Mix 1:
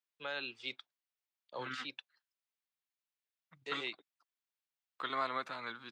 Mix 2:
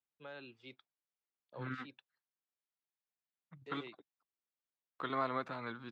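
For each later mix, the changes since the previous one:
first voice -9.0 dB; master: add tilt -3.5 dB/oct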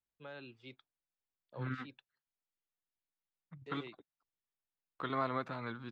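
master: remove HPF 200 Hz 6 dB/oct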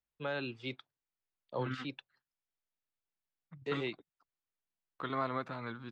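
first voice +12.0 dB

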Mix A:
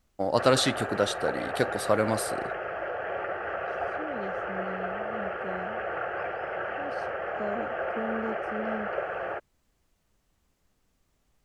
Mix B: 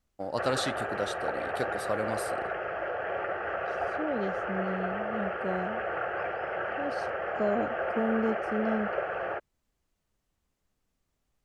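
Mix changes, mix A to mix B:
first voice -7.5 dB; second voice +5.5 dB

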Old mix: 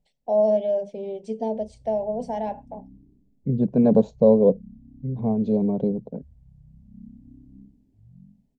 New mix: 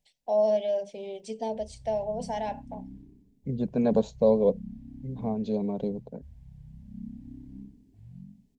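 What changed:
background +11.5 dB; master: add tilt shelf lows -8.5 dB, about 1100 Hz

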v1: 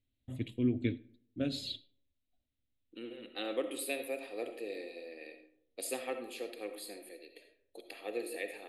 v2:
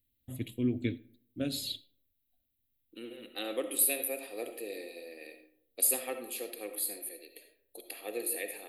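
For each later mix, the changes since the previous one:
master: remove air absorption 93 m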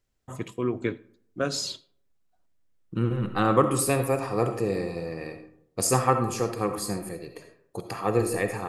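second voice: remove HPF 420 Hz 24 dB/oct; master: remove EQ curve 120 Hz 0 dB, 170 Hz -13 dB, 250 Hz +3 dB, 410 Hz -12 dB, 610 Hz -10 dB, 1100 Hz -30 dB, 2100 Hz -6 dB, 3900 Hz +2 dB, 5700 Hz -21 dB, 13000 Hz +14 dB

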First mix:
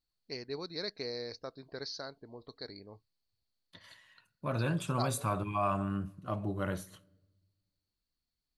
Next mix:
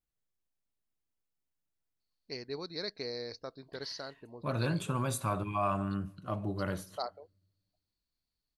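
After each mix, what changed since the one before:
first voice: entry +2.00 s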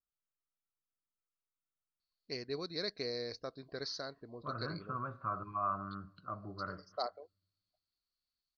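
second voice: add ladder low-pass 1400 Hz, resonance 75%; master: add Butterworth band-stop 880 Hz, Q 6.6

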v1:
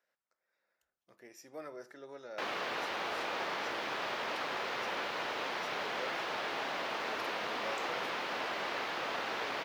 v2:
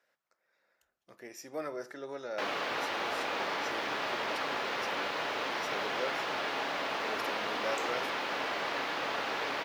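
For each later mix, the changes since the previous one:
speech +7.0 dB; reverb: on, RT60 0.45 s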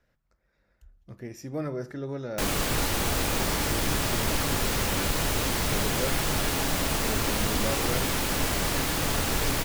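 background: remove air absorption 270 m; master: remove HPF 550 Hz 12 dB/oct

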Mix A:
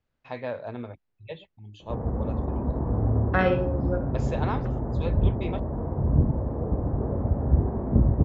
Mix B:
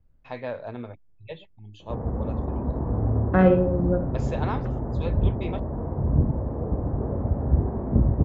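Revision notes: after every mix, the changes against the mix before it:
second voice: add tilt -4.5 dB/oct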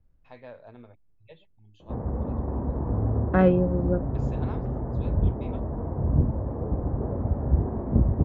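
first voice -12.0 dB; reverb: off

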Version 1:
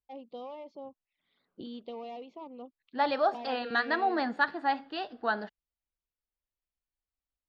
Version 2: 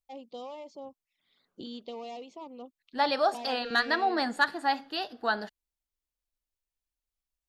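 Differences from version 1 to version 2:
second voice: remove HPF 60 Hz; master: remove air absorption 250 m

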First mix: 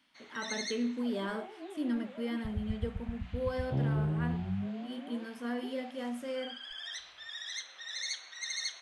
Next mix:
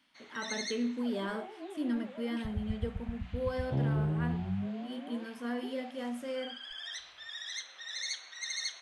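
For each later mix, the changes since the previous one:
second sound: remove air absorption 470 m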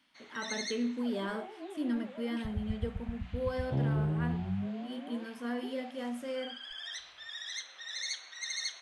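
none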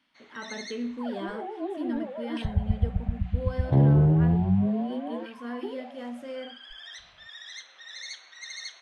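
second sound +11.5 dB; master: add high shelf 6300 Hz -9.5 dB

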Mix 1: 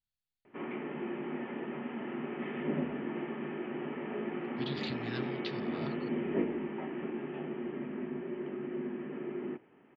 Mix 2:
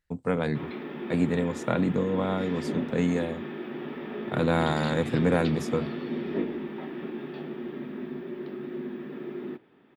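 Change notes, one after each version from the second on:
first voice: unmuted; background: remove rippled Chebyshev low-pass 3100 Hz, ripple 3 dB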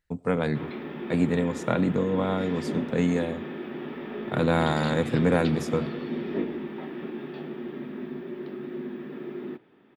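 reverb: on, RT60 2.4 s

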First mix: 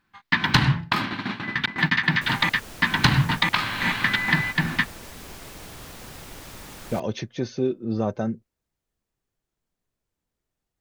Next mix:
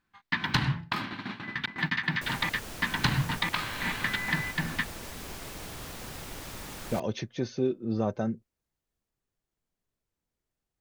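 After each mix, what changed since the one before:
speech -3.5 dB; first sound -8.0 dB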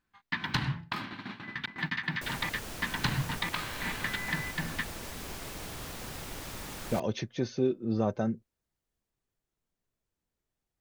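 first sound -4.0 dB

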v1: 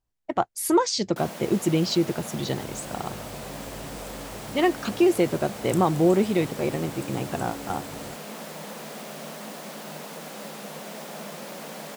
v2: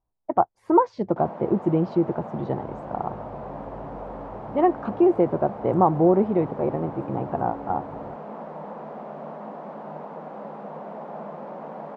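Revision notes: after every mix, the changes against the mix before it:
master: add synth low-pass 910 Hz, resonance Q 1.9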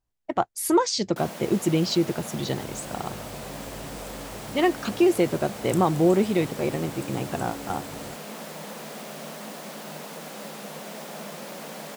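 master: remove synth low-pass 910 Hz, resonance Q 1.9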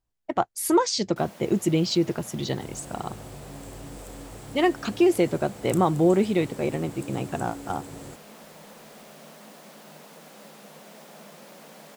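first sound -9.0 dB

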